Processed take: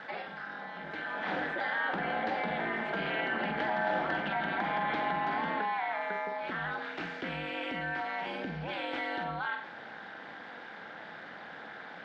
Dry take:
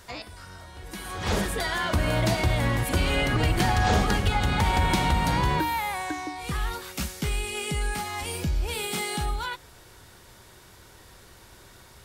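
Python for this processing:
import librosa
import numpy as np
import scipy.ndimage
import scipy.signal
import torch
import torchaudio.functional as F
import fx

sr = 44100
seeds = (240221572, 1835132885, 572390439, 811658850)

y = x * np.sin(2.0 * np.pi * 110.0 * np.arange(len(x)) / sr)
y = fx.cabinet(y, sr, low_hz=330.0, low_slope=12, high_hz=3000.0, hz=(420.0, 770.0, 1100.0, 1600.0, 2600.0), db=(-4, 5, -5, 8, -5))
y = fx.room_flutter(y, sr, wall_m=7.9, rt60_s=0.3)
y = fx.env_flatten(y, sr, amount_pct=50)
y = F.gain(torch.from_numpy(y), -6.5).numpy()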